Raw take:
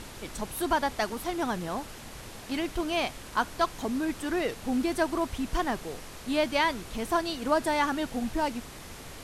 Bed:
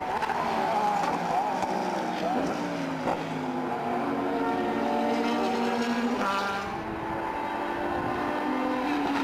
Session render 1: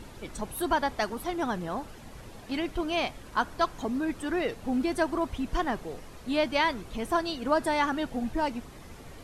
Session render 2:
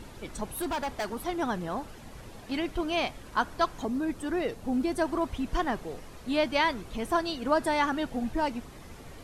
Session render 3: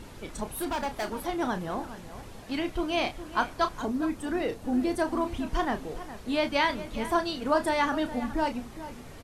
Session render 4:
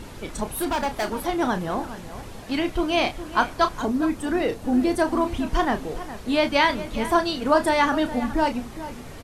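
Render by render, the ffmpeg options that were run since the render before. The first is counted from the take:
-af "afftdn=nr=9:nf=-45"
-filter_complex "[0:a]asettb=1/sr,asplit=3[a][b][c];[a]atrim=end=0.544[d];[b]atrim=start=0.54:end=1.12,asetpts=PTS-STARTPTS,afade=t=in:d=0.004:c=qsin,afade=t=out:st=0.576:d=0.004:c=qsin,asoftclip=type=hard:threshold=-27.5dB[e];[c]atrim=start=1.116[f];[d][e]acrossfade=d=0.004:c1=hsin:c2=qsin[g];[g][f]acrossfade=d=0.004:c1=qsin:c2=hsin,asettb=1/sr,asplit=3[h][i][j];[h]atrim=end=3.854[k];[i]atrim=start=3.85:end=5.05,asetpts=PTS-STARTPTS,afade=t=in:d=0.004:c=qsin,afade=t=out:st=1.196:d=0.004:c=qsin,equalizer=f=2.2k:w=0.54:g=-4[l];[j]atrim=start=5.046[m];[k][l]acrossfade=d=0.004:c1=hsin:c2=qsin[n];[n][m]acrossfade=d=0.004:c1=qsin:c2=hsin"
-filter_complex "[0:a]asplit=2[a][b];[b]adelay=32,volume=-9dB[c];[a][c]amix=inputs=2:normalize=0,asplit=2[d][e];[e]adelay=414,volume=-13dB,highshelf=f=4k:g=-9.32[f];[d][f]amix=inputs=2:normalize=0"
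-af "volume=6dB"

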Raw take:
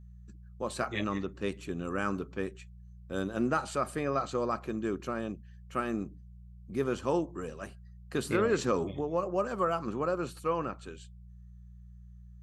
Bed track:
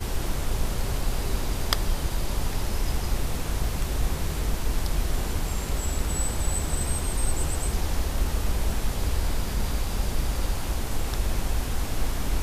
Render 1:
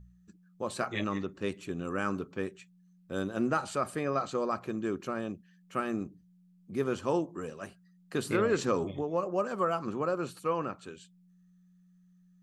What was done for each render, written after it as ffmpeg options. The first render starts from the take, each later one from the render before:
-af "bandreject=f=60:t=h:w=4,bandreject=f=120:t=h:w=4"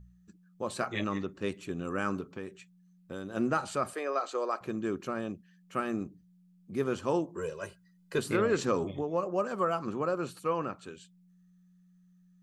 -filter_complex "[0:a]asettb=1/sr,asplit=3[a][b][c];[a]atrim=end=2.204[d];[b]atrim=start=2.2:end=3.35,asetpts=PTS-STARTPTS,afade=t=in:d=0.004:c=qsin,afade=t=out:st=1.146:d=0.004:c=qsin,acompressor=threshold=-34dB:ratio=6:attack=3.2:release=140:knee=1:detection=peak[e];[c]atrim=start=3.346[f];[d][e]acrossfade=d=0.004:c1=hsin:c2=qsin[g];[g][f]acrossfade=d=0.004:c1=qsin:c2=hsin,asettb=1/sr,asplit=3[h][i][j];[h]atrim=end=3.934[k];[i]atrim=start=3.93:end=4.61,asetpts=PTS-STARTPTS,afade=t=in:d=0.004:c=qsin,afade=t=out:st=0.676:d=0.004:c=qsin,highpass=f=360:w=0.5412,highpass=f=360:w=1.3066[l];[j]atrim=start=4.606[m];[k][l]acrossfade=d=0.004:c1=hsin:c2=qsin[n];[n][m]acrossfade=d=0.004:c1=qsin:c2=hsin,asettb=1/sr,asplit=3[o][p][q];[o]atrim=end=7.364[r];[p]atrim=start=7.36:end=8.19,asetpts=PTS-STARTPTS,afade=t=in:d=0.004:c=qsin,afade=t=out:st=0.826:d=0.004:c=qsin,aecho=1:1:2:0.93,atrim=end_sample=36603[s];[q]atrim=start=8.186[t];[r][s]acrossfade=d=0.004:c1=hsin:c2=qsin[u];[u][t]acrossfade=d=0.004:c1=qsin:c2=hsin"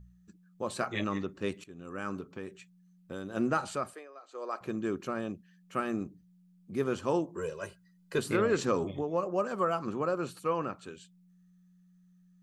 -filter_complex "[0:a]asplit=4[a][b][c][d];[a]atrim=end=1.64,asetpts=PTS-STARTPTS,afade=t=out:st=1.636:d=0.004:c=hsin:silence=0.149624[e];[b]atrim=start=1.64:end=4.08,asetpts=PTS-STARTPTS,afade=t=in:d=0.86:silence=0.149624,afade=t=out:st=2.03:d=0.41:silence=0.105925[f];[c]atrim=start=4.08:end=4.27,asetpts=PTS-STARTPTS,volume=-19.5dB[g];[d]atrim=start=4.27,asetpts=PTS-STARTPTS,afade=t=in:d=0.41:silence=0.105925[h];[e][f][g][h]concat=n=4:v=0:a=1"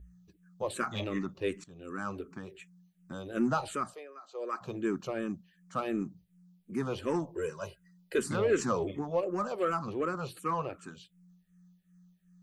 -filter_complex "[0:a]asplit=2[a][b];[b]volume=29dB,asoftclip=hard,volume=-29dB,volume=-6.5dB[c];[a][c]amix=inputs=2:normalize=0,asplit=2[d][e];[e]afreqshift=-2.7[f];[d][f]amix=inputs=2:normalize=1"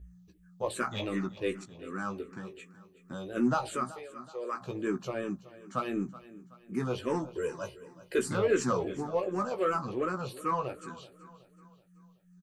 -filter_complex "[0:a]asplit=2[a][b];[b]adelay=16,volume=-6dB[c];[a][c]amix=inputs=2:normalize=0,aecho=1:1:376|752|1128|1504:0.133|0.0587|0.0258|0.0114"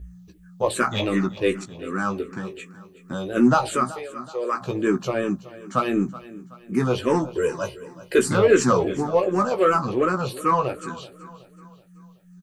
-af "volume=10.5dB"

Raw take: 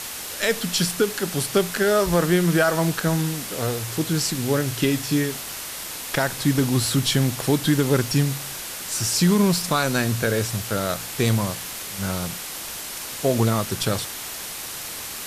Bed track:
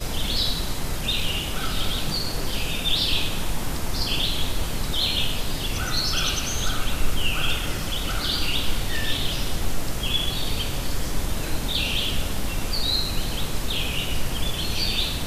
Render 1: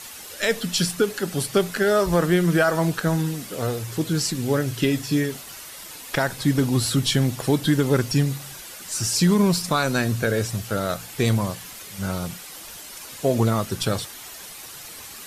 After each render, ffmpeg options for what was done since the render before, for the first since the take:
-af "afftdn=nr=9:nf=-34"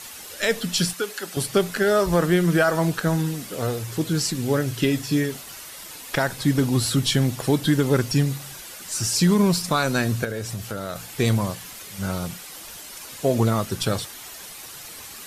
-filter_complex "[0:a]asettb=1/sr,asplit=3[a][b][c];[a]atrim=end=0.934[d];[b]atrim=start=0.93:end=1.37,asetpts=PTS-STARTPTS,afade=t=in:d=0.004:c=qsin,afade=t=out:st=0.436:d=0.004:c=qsin,highpass=f=860:p=1[e];[c]atrim=start=1.366[f];[d][e]acrossfade=d=0.004:c1=hsin:c2=qsin[g];[g][f]acrossfade=d=0.004:c1=qsin:c2=hsin,asettb=1/sr,asplit=3[h][i][j];[h]atrim=end=10.244[k];[i]atrim=start=10.24:end=10.96,asetpts=PTS-STARTPTS,afade=t=in:d=0.004:c=qsin,afade=t=out:st=0.716:d=0.004:c=qsin,acompressor=threshold=-27dB:ratio=3:attack=3.2:release=140:knee=1:detection=peak[l];[j]atrim=start=10.956[m];[k][l]acrossfade=d=0.004:c1=hsin:c2=qsin[n];[n][m]acrossfade=d=0.004:c1=qsin:c2=hsin"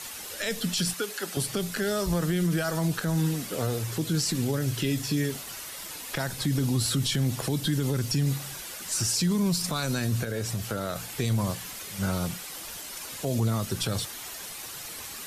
-filter_complex "[0:a]acrossover=split=210|3000[a][b][c];[b]acompressor=threshold=-27dB:ratio=6[d];[a][d][c]amix=inputs=3:normalize=0,alimiter=limit=-18dB:level=0:latency=1:release=34"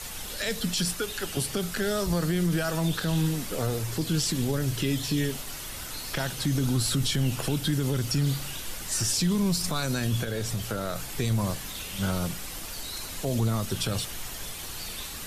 -filter_complex "[1:a]volume=-16.5dB[a];[0:a][a]amix=inputs=2:normalize=0"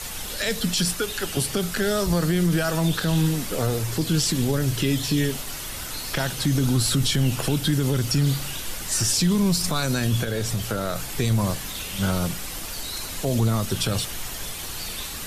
-af "volume=4.5dB"

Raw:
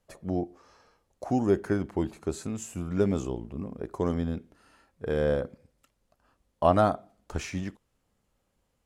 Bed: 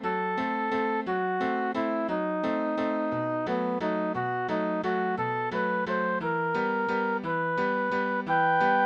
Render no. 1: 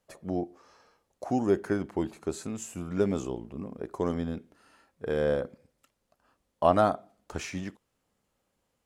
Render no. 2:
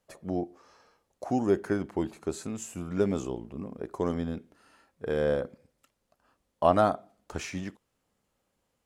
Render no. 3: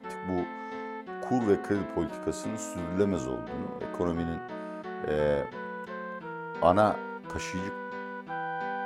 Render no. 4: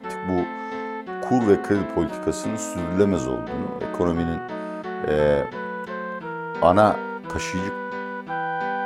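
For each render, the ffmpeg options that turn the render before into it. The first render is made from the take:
-af "lowshelf=f=100:g=-11"
-af anull
-filter_complex "[1:a]volume=-10.5dB[a];[0:a][a]amix=inputs=2:normalize=0"
-af "volume=7.5dB,alimiter=limit=-3dB:level=0:latency=1"

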